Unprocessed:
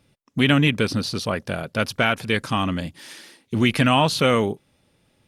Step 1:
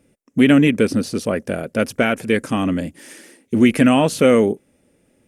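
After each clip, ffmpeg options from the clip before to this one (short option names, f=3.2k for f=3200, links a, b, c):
-af "equalizer=f=125:t=o:w=1:g=-5,equalizer=f=250:t=o:w=1:g=7,equalizer=f=500:t=o:w=1:g=6,equalizer=f=1k:t=o:w=1:g=-6,equalizer=f=2k:t=o:w=1:g=3,equalizer=f=4k:t=o:w=1:g=-11,equalizer=f=8k:t=o:w=1:g=6,volume=1dB"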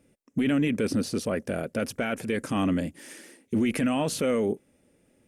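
-af "alimiter=limit=-13dB:level=0:latency=1:release=14,volume=-4.5dB"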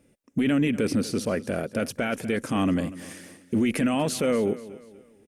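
-af "aecho=1:1:241|482|723:0.141|0.0537|0.0204,volume=1.5dB"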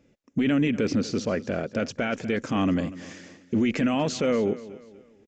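-af "aresample=16000,aresample=44100"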